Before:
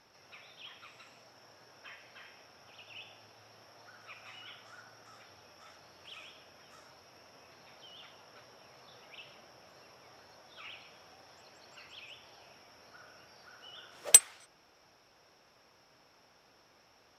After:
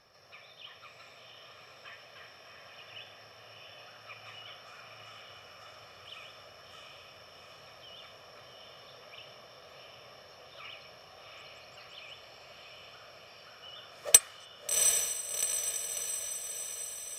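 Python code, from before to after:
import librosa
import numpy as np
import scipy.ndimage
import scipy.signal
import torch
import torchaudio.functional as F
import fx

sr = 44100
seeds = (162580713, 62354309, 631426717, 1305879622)

y = x + 0.52 * np.pad(x, (int(1.7 * sr / 1000.0), 0))[:len(x)]
y = fx.echo_diffused(y, sr, ms=737, feedback_pct=63, wet_db=-3)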